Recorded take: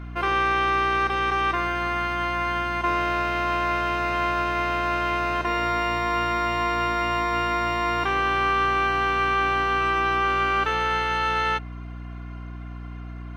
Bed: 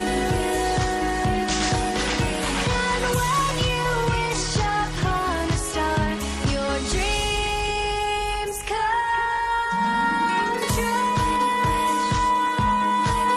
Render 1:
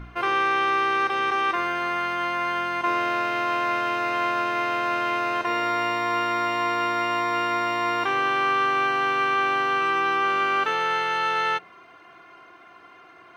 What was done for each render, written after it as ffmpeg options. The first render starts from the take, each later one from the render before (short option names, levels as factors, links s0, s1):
-af "bandreject=f=60:t=h:w=4,bandreject=f=120:t=h:w=4,bandreject=f=180:t=h:w=4,bandreject=f=240:t=h:w=4,bandreject=f=300:t=h:w=4,bandreject=f=360:t=h:w=4,bandreject=f=420:t=h:w=4,bandreject=f=480:t=h:w=4,bandreject=f=540:t=h:w=4,bandreject=f=600:t=h:w=4,bandreject=f=660:t=h:w=4"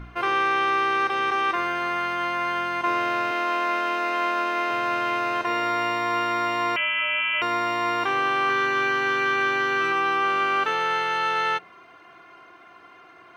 -filter_complex "[0:a]asettb=1/sr,asplit=3[s0][s1][s2];[s0]atrim=end=3.314[s3];[s1]atrim=start=3.31:end=4.71,asetpts=PTS-STARTPTS,afade=t=in:d=0.004:c=qsin,afade=t=out:st=1.396:d=0.004:c=qsin,highpass=f=210:w=0.5412,highpass=f=210:w=1.3066[s4];[s2]atrim=start=4.706[s5];[s3][s4]acrossfade=d=0.004:c1=hsin:c2=qsin[s6];[s6][s5]acrossfade=d=0.004:c1=qsin:c2=hsin,asettb=1/sr,asplit=3[s7][s8][s9];[s7]atrim=end=6.764[s10];[s8]atrim=start=6.76:end=7.42,asetpts=PTS-STARTPTS,afade=t=in:d=0.004:c=qsin,afade=t=out:st=0.656:d=0.004:c=qsin,lowpass=f=2900:t=q:w=0.5098,lowpass=f=2900:t=q:w=0.6013,lowpass=f=2900:t=q:w=0.9,lowpass=f=2900:t=q:w=2.563,afreqshift=-3400[s11];[s9]atrim=start=7.416[s12];[s10][s11]acrossfade=d=0.004:c1=hsin:c2=qsin[s13];[s13][s12]acrossfade=d=0.004:c1=qsin:c2=hsin,asettb=1/sr,asplit=3[s14][s15][s16];[s14]atrim=end=8.474[s17];[s15]atrim=start=8.47:end=9.92,asetpts=PTS-STARTPTS,afade=t=in:d=0.004:c=qsin,afade=t=out:st=1.446:d=0.004:c=qsin,asplit=2[s18][s19];[s19]adelay=25,volume=0.631[s20];[s18][s20]amix=inputs=2:normalize=0,atrim=end_sample=63945[s21];[s16]atrim=start=9.916[s22];[s17][s21]acrossfade=d=0.004:c1=hsin:c2=qsin[s23];[s23][s22]acrossfade=d=0.004:c1=qsin:c2=hsin"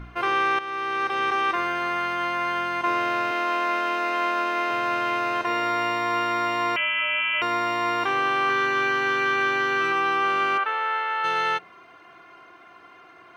-filter_complex "[0:a]asplit=3[s0][s1][s2];[s0]afade=t=out:st=10.57:d=0.02[s3];[s1]highpass=630,lowpass=2400,afade=t=in:st=10.57:d=0.02,afade=t=out:st=11.23:d=0.02[s4];[s2]afade=t=in:st=11.23:d=0.02[s5];[s3][s4][s5]amix=inputs=3:normalize=0,asplit=2[s6][s7];[s6]atrim=end=0.59,asetpts=PTS-STARTPTS,afade=t=out:st=0.586:d=0.004:c=hsin:silence=0.237137[s8];[s7]atrim=start=0.59,asetpts=PTS-STARTPTS,afade=t=in:d=0.64:silence=0.237137[s9];[s8][s9]concat=n=2:v=0:a=1"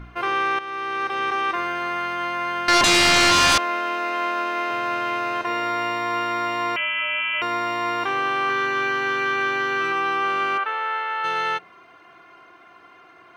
-filter_complex "[0:a]asettb=1/sr,asplit=3[s0][s1][s2];[s0]atrim=end=2.684[s3];[s1]atrim=start=2.68:end=3.58,asetpts=PTS-STARTPTS,afade=t=in:d=0.004:c=qsin,afade=t=out:st=0.896:d=0.004:c=qsin,aeval=exprs='0.224*sin(PI/2*5.62*val(0)/0.224)':c=same[s4];[s2]atrim=start=3.576[s5];[s3][s4]acrossfade=d=0.004:c1=hsin:c2=qsin[s6];[s6][s5]acrossfade=d=0.004:c1=qsin:c2=hsin"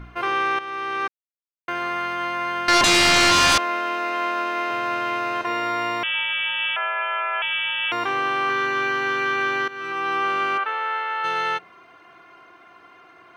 -filter_complex "[0:a]asettb=1/sr,asplit=3[s0][s1][s2];[s0]atrim=end=6.034[s3];[s1]atrim=start=6.03:end=7.92,asetpts=PTS-STARTPTS,afade=t=in:d=0.004:c=qsin,afade=t=out:st=1.886:d=0.004:c=qsin,lowpass=f=3100:t=q:w=0.5098,lowpass=f=3100:t=q:w=0.6013,lowpass=f=3100:t=q:w=0.9,lowpass=f=3100:t=q:w=2.563,afreqshift=-3700[s4];[s2]atrim=start=7.916[s5];[s3][s4]acrossfade=d=0.004:c1=hsin:c2=qsin[s6];[s6][s5]acrossfade=d=0.004:c1=qsin:c2=hsin,asplit=4[s7][s8][s9][s10];[s7]atrim=end=1.08,asetpts=PTS-STARTPTS,afade=t=out:st=1.076:d=0.004:c=hsin[s11];[s8]atrim=start=1.08:end=1.68,asetpts=PTS-STARTPTS,volume=0[s12];[s9]atrim=start=1.68:end=9.68,asetpts=PTS-STARTPTS,afade=t=in:d=0.004:c=hsin,afade=t=out:st=7.996:d=0.004:c=hsin:silence=0.149624[s13];[s10]atrim=start=9.68,asetpts=PTS-STARTPTS,afade=t=in:d=0.48:silence=0.149624[s14];[s11][s12][s13][s14]concat=n=4:v=0:a=1"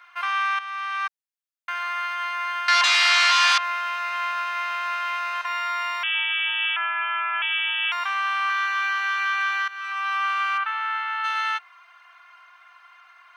-filter_complex "[0:a]highpass=f=1000:w=0.5412,highpass=f=1000:w=1.3066,acrossover=split=5600[s0][s1];[s1]acompressor=threshold=0.00891:ratio=4:attack=1:release=60[s2];[s0][s2]amix=inputs=2:normalize=0"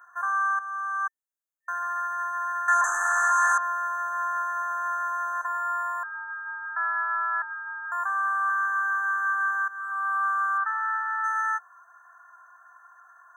-af "afftfilt=real='re*(1-between(b*sr/4096,1800,6000))':imag='im*(1-between(b*sr/4096,1800,6000))':win_size=4096:overlap=0.75,lowshelf=f=350:g=-7"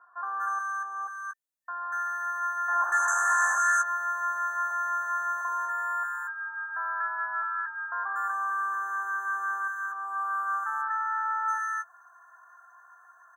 -filter_complex "[0:a]asplit=2[s0][s1];[s1]adelay=15,volume=0.376[s2];[s0][s2]amix=inputs=2:normalize=0,acrossover=split=1300[s3][s4];[s4]adelay=240[s5];[s3][s5]amix=inputs=2:normalize=0"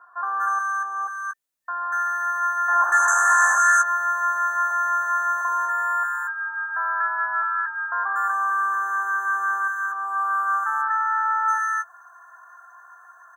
-af "volume=2.24"